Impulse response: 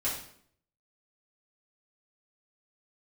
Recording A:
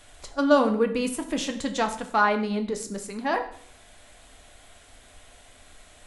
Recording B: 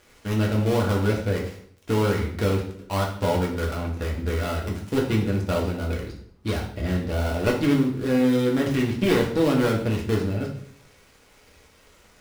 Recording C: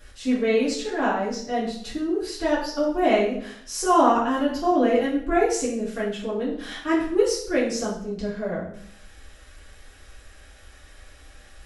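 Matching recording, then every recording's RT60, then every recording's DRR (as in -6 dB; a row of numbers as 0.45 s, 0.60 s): C; 0.60 s, 0.60 s, 0.60 s; 5.0 dB, -2.5 dB, -8.5 dB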